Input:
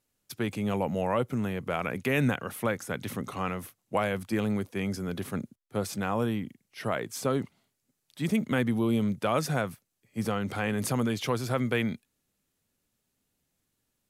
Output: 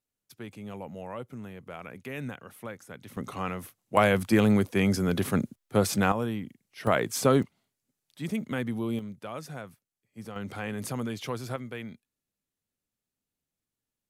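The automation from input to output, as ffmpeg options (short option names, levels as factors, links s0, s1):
-af "asetnsamples=n=441:p=0,asendcmd='3.17 volume volume -1dB;3.97 volume volume 7dB;6.12 volume volume -2dB;6.87 volume volume 6dB;7.43 volume volume -4.5dB;8.99 volume volume -11.5dB;10.36 volume volume -5dB;11.56 volume volume -11dB',volume=0.282"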